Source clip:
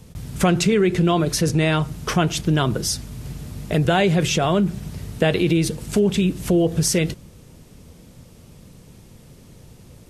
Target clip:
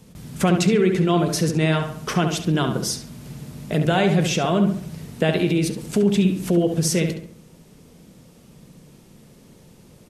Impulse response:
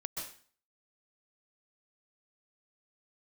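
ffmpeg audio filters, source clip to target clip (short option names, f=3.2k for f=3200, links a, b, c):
-filter_complex "[0:a]lowshelf=f=130:t=q:w=1.5:g=-7,asplit=2[a][b];[b]adelay=69,lowpass=f=2.8k:p=1,volume=-6dB,asplit=2[c][d];[d]adelay=69,lowpass=f=2.8k:p=1,volume=0.46,asplit=2[e][f];[f]adelay=69,lowpass=f=2.8k:p=1,volume=0.46,asplit=2[g][h];[h]adelay=69,lowpass=f=2.8k:p=1,volume=0.46,asplit=2[i][j];[j]adelay=69,lowpass=f=2.8k:p=1,volume=0.46,asplit=2[k][l];[l]adelay=69,lowpass=f=2.8k:p=1,volume=0.46[m];[c][e][g][i][k][m]amix=inputs=6:normalize=0[n];[a][n]amix=inputs=2:normalize=0,volume=-2.5dB"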